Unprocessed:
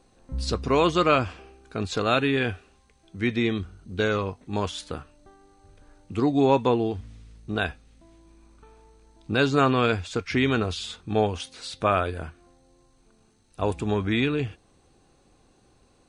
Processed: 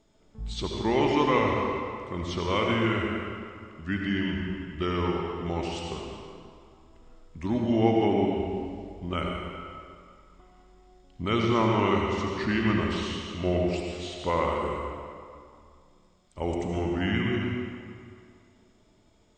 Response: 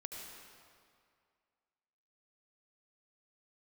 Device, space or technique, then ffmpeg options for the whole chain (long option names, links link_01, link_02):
slowed and reverbed: -filter_complex "[0:a]asetrate=36603,aresample=44100[link_01];[1:a]atrim=start_sample=2205[link_02];[link_01][link_02]afir=irnorm=-1:irlink=0"